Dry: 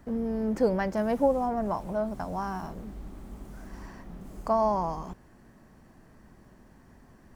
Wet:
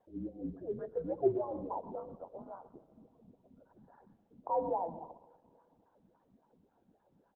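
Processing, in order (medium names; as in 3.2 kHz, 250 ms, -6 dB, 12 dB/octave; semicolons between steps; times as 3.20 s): octave divider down 1 oct, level +2 dB; spectral gate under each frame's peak -25 dB strong; 1.95–2.74 s: expander -27 dBFS; dynamic bell 2.4 kHz, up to -3 dB, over -43 dBFS, Q 1.1; 0.49–1.04 s: static phaser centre 630 Hz, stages 8; 3.94–4.39 s: compression 16:1, threshold -39 dBFS, peak gain reduction 6 dB; wah-wah 3.6 Hz 340–1200 Hz, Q 4.7; delay 128 ms -14.5 dB; on a send at -16.5 dB: reverberation RT60 2.2 s, pre-delay 15 ms; on the sum: mistuned SSB -150 Hz 290–3500 Hz; Opus 8 kbps 48 kHz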